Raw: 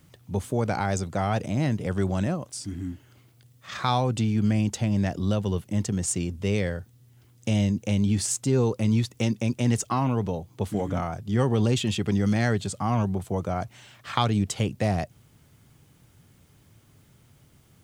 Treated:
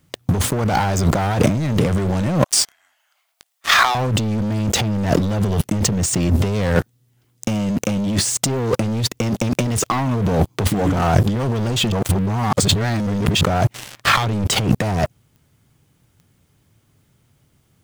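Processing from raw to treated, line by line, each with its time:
2.44–3.95 elliptic high-pass 660 Hz, stop band 50 dB
6.75–8.23 bell 81 Hz -9.5 dB
11.92–13.41 reverse
whole clip: sample leveller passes 5; negative-ratio compressor -19 dBFS, ratio -1; dynamic EQ 9000 Hz, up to -4 dB, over -34 dBFS, Q 0.75; gain +1 dB

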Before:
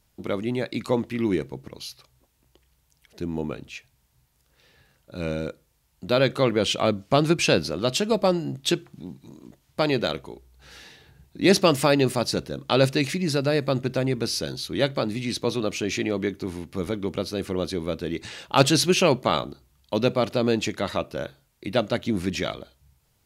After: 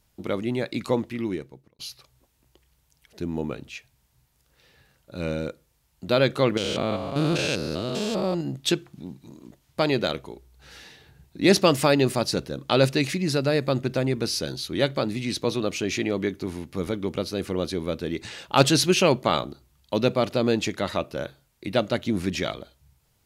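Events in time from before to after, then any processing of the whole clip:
0.9–1.79 fade out
6.57–8.41 stepped spectrum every 0.2 s

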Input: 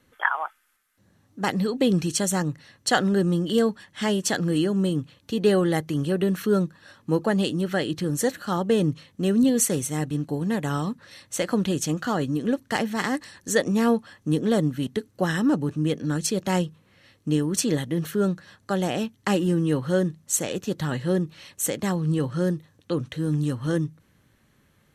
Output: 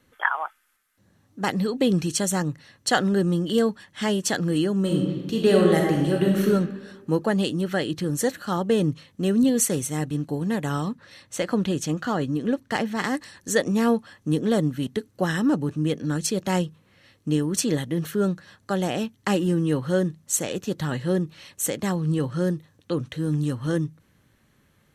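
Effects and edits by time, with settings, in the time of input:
4.8–6.47 reverb throw, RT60 1.3 s, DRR -0.5 dB
10.88–13.04 high shelf 6700 Hz -7 dB

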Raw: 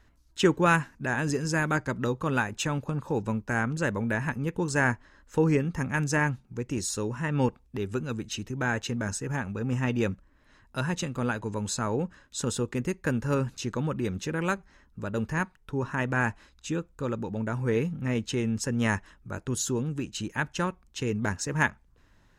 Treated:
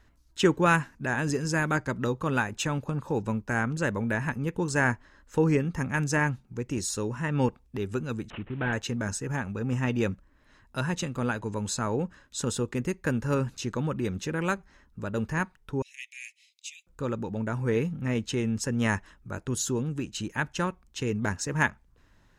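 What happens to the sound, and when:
8.3–8.73 CVSD 16 kbps
15.82–16.87 steep high-pass 2100 Hz 96 dB/oct

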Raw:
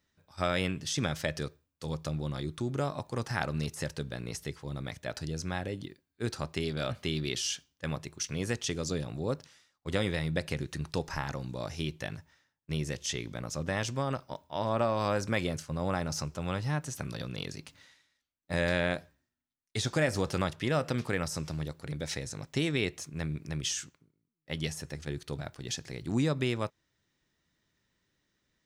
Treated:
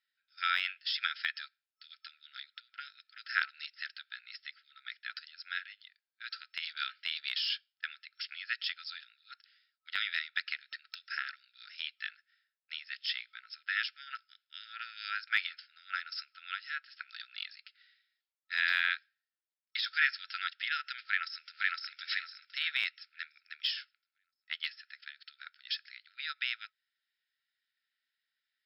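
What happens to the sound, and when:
21.03–21.77 echo throw 0.51 s, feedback 40%, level 0 dB
whole clip: FFT band-pass 1300–5400 Hz; de-esser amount 95%; upward expander 1.5:1, over -58 dBFS; gain +7.5 dB

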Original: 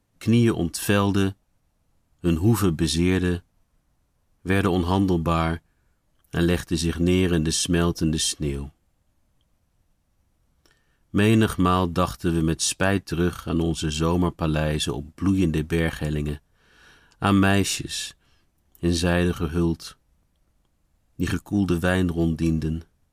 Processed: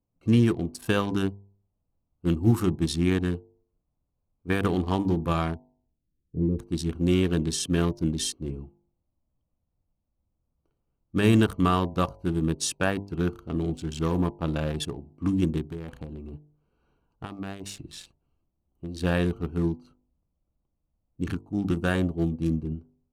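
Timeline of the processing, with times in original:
5.55–6.59 inverse Chebyshev low-pass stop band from 1400 Hz, stop band 60 dB
15.65–19.01 compressor 8:1, threshold -23 dBFS
whole clip: Wiener smoothing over 25 samples; de-hum 49.71 Hz, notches 20; upward expander 1.5:1, over -35 dBFS

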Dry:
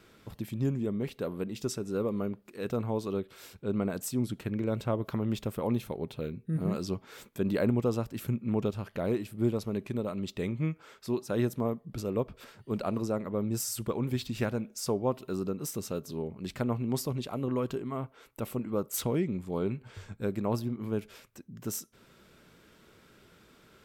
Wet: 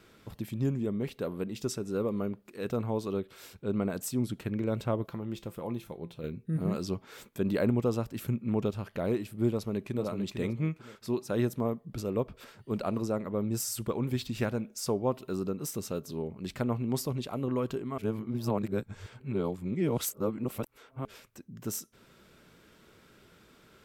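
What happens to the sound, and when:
5.06–6.24 resonator 170 Hz, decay 0.22 s
9.52–10.05 echo throw 0.45 s, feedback 25%, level -6.5 dB
17.98–21.05 reverse

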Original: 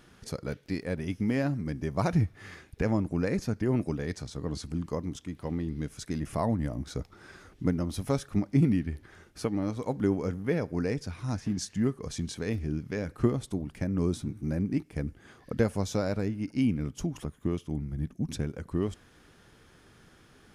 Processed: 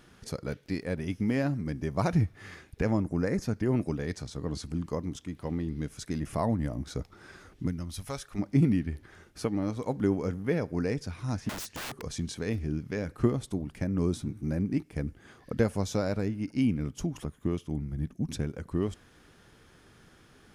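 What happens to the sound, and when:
3.03–3.43 spectral gain 2200–4800 Hz -7 dB
7.66–8.38 bell 690 Hz -> 140 Hz -13.5 dB 2.8 oct
11.49–12.03 wrapped overs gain 32.5 dB

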